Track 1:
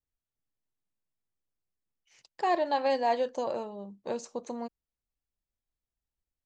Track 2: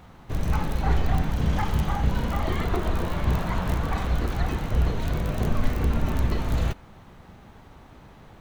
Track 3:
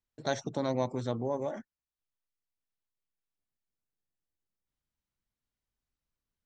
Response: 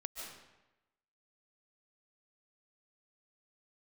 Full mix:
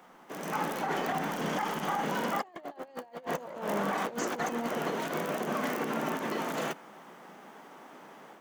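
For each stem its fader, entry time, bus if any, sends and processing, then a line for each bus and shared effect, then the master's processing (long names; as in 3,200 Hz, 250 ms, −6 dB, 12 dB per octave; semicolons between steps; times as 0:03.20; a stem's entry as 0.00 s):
+2.0 dB, 0.00 s, send −6.5 dB, no processing
−5.5 dB, 0.00 s, no send, Bessel high-pass filter 350 Hz, order 8; automatic gain control gain up to 5.5 dB; brickwall limiter −18.5 dBFS, peak gain reduction 9.5 dB
muted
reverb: on, RT60 1.0 s, pre-delay 105 ms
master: compressor whose output falls as the input rises −33 dBFS, ratio −0.5; thirty-one-band graphic EQ 160 Hz +3 dB, 2,500 Hz −3 dB, 4,000 Hz −9 dB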